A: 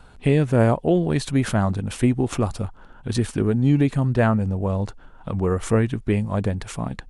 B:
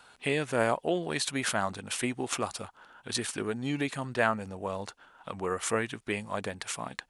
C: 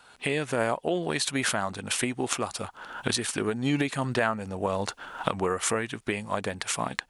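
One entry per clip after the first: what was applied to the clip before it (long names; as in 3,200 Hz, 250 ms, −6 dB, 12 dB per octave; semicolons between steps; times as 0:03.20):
high-pass filter 1,500 Hz 6 dB per octave; level +2 dB
camcorder AGC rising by 28 dB per second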